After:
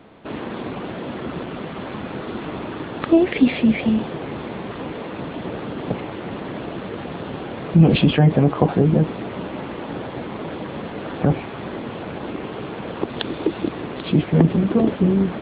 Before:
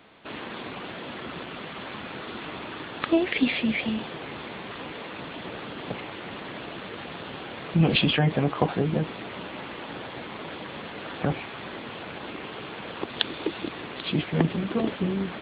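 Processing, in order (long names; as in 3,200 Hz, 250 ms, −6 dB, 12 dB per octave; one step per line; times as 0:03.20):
tilt shelving filter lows +7 dB, about 1,100 Hz
in parallel at −2 dB: brickwall limiter −13 dBFS, peak gain reduction 9.5 dB
on the sum: level −1 dB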